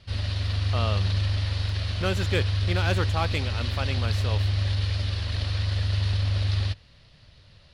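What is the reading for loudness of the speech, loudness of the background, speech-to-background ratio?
-31.5 LUFS, -27.0 LUFS, -4.5 dB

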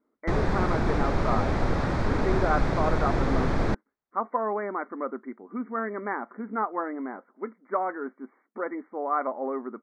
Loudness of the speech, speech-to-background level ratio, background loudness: -31.5 LUFS, -4.0 dB, -27.5 LUFS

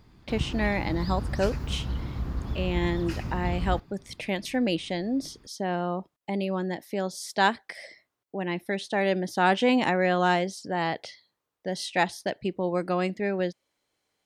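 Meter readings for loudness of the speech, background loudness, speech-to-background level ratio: -28.5 LUFS, -33.5 LUFS, 5.0 dB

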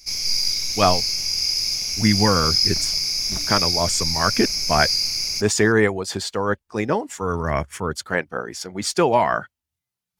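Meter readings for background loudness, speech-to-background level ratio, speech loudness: -20.0 LUFS, -2.5 dB, -22.5 LUFS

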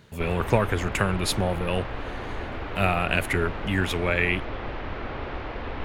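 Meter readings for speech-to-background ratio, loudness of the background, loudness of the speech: 8.5 dB, -34.5 LUFS, -26.0 LUFS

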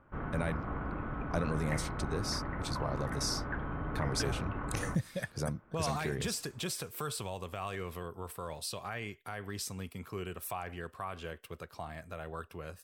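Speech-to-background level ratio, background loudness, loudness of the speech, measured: 0.5 dB, -39.0 LUFS, -38.5 LUFS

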